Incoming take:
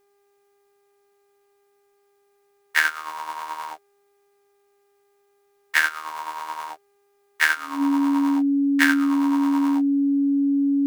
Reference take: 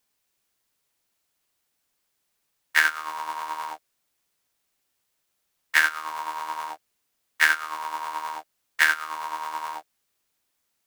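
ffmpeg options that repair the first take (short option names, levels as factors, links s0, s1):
-af "bandreject=f=402.4:t=h:w=4,bandreject=f=804.8:t=h:w=4,bandreject=f=1207.2:t=h:w=4,bandreject=f=1609.6:t=h:w=4,bandreject=f=2012:t=h:w=4,bandreject=f=2414.4:t=h:w=4,bandreject=f=280:w=30"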